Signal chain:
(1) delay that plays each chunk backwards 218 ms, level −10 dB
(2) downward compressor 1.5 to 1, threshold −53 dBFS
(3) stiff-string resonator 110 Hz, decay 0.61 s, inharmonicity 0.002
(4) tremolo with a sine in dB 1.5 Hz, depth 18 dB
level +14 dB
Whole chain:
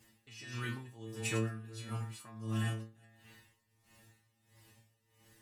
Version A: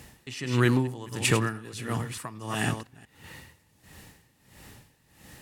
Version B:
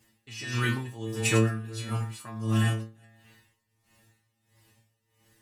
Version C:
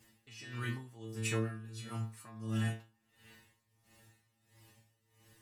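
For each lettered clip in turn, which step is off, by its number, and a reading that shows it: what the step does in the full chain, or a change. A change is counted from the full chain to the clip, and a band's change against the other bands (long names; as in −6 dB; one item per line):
3, 125 Hz band −3.0 dB
2, average gain reduction 9.5 dB
1, change in crest factor −1.5 dB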